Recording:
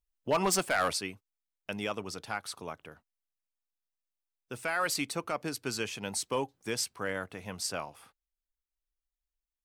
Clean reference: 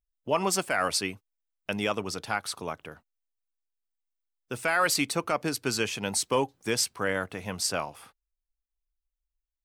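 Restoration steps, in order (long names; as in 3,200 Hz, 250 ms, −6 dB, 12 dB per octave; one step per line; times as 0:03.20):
clipped peaks rebuilt −21 dBFS
level 0 dB, from 0:00.93 +6 dB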